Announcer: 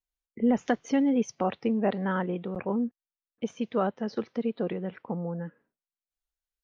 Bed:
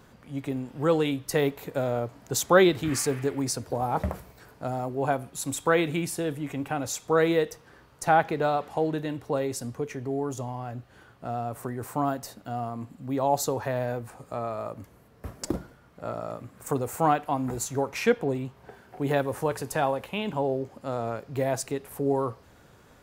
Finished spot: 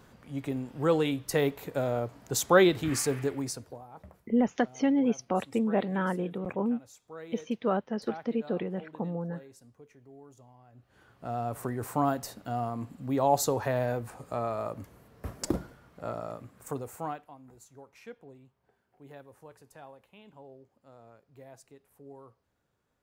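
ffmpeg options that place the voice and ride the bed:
-filter_complex "[0:a]adelay=3900,volume=-1dB[a];[1:a]volume=20dB,afade=t=out:st=3.22:d=0.62:silence=0.1,afade=t=in:st=10.72:d=0.81:silence=0.0794328,afade=t=out:st=15.7:d=1.64:silence=0.0668344[b];[a][b]amix=inputs=2:normalize=0"

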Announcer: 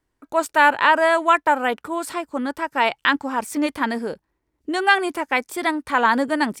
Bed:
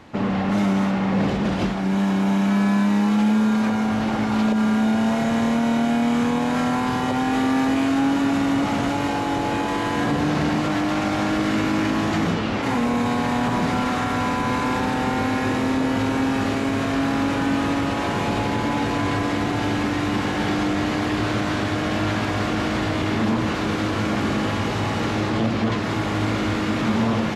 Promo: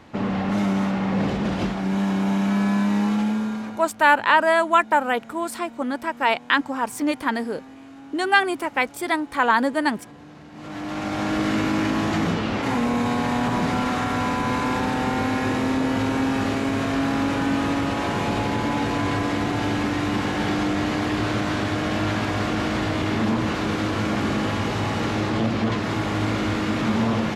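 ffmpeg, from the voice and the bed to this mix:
-filter_complex "[0:a]adelay=3450,volume=-1dB[a];[1:a]volume=20dB,afade=t=out:st=3.05:d=0.86:silence=0.0891251,afade=t=in:st=10.52:d=0.9:silence=0.0794328[b];[a][b]amix=inputs=2:normalize=0"

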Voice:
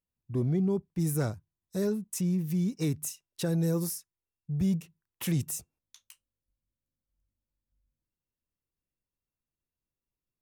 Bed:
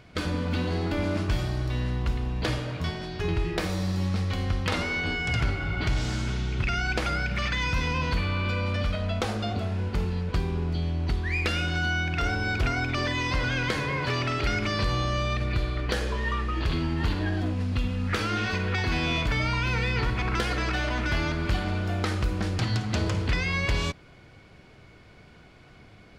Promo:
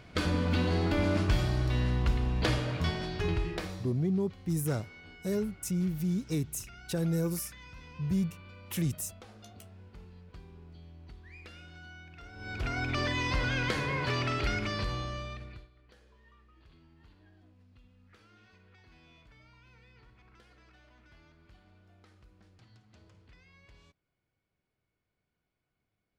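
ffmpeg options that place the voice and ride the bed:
-filter_complex "[0:a]adelay=3500,volume=-2dB[a];[1:a]volume=19dB,afade=t=out:st=3.05:d=0.88:silence=0.0749894,afade=t=in:st=12.33:d=0.61:silence=0.105925,afade=t=out:st=14.33:d=1.36:silence=0.0334965[b];[a][b]amix=inputs=2:normalize=0"

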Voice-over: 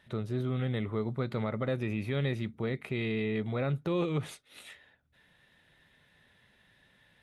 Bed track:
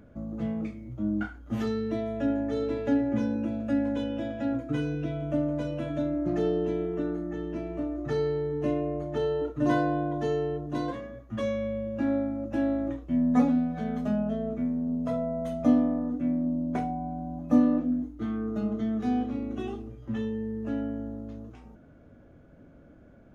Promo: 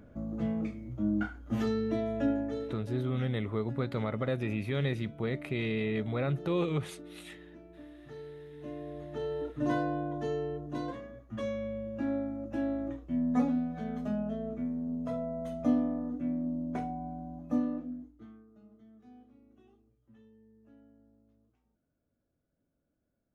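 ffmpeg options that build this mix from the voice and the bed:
-filter_complex "[0:a]adelay=2600,volume=0dB[a];[1:a]volume=11.5dB,afade=t=out:st=2.21:d=0.65:silence=0.141254,afade=t=in:st=8.53:d=1:silence=0.237137,afade=t=out:st=17.08:d=1.38:silence=0.0749894[b];[a][b]amix=inputs=2:normalize=0"

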